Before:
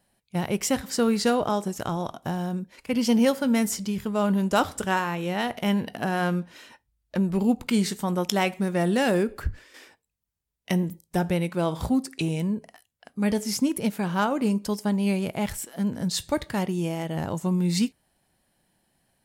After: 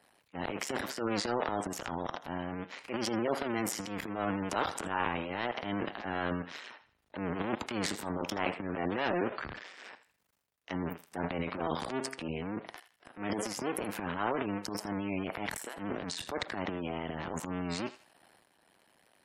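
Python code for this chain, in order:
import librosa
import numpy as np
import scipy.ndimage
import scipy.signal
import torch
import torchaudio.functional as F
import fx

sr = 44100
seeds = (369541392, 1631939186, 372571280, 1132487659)

y = fx.cycle_switch(x, sr, every=2, mode='muted')
y = fx.highpass(y, sr, hz=690.0, slope=6)
y = fx.high_shelf(y, sr, hz=3600.0, db=-11.0)
y = fx.transient(y, sr, attack_db=-10, sustain_db=11)
y = fx.echo_thinned(y, sr, ms=81, feedback_pct=32, hz=870.0, wet_db=-13.5)
y = fx.spec_gate(y, sr, threshold_db=-25, keep='strong')
y = fx.band_squash(y, sr, depth_pct=40)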